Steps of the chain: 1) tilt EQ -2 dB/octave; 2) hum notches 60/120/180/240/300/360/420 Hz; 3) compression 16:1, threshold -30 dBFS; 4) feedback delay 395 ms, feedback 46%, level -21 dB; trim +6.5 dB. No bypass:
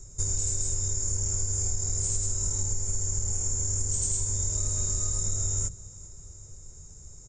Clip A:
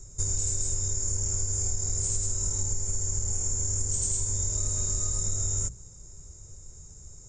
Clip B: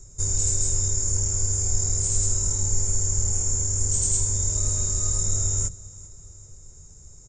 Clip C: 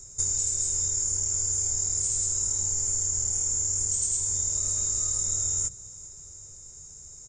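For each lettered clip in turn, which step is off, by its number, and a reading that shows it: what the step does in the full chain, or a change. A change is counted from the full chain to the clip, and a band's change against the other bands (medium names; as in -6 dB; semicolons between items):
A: 4, echo-to-direct -20.0 dB to none; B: 3, mean gain reduction 3.5 dB; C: 1, 125 Hz band -11.5 dB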